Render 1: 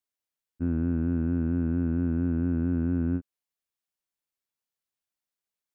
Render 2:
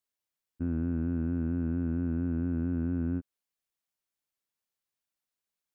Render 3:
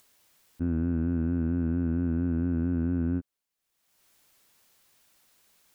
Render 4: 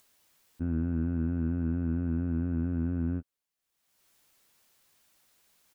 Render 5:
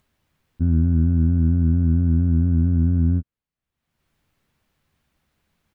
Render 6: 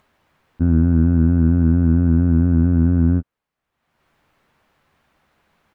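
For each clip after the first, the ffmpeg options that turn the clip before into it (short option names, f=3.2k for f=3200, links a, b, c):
-af "alimiter=limit=-22.5dB:level=0:latency=1:release=32"
-af "acompressor=mode=upward:threshold=-49dB:ratio=2.5,volume=3dB"
-filter_complex "[0:a]asplit=2[a][b];[b]adelay=13,volume=-11dB[c];[a][c]amix=inputs=2:normalize=0,volume=-3dB"
-af "bass=f=250:g=15,treble=f=4k:g=-13"
-af "equalizer=f=920:w=0.31:g=13"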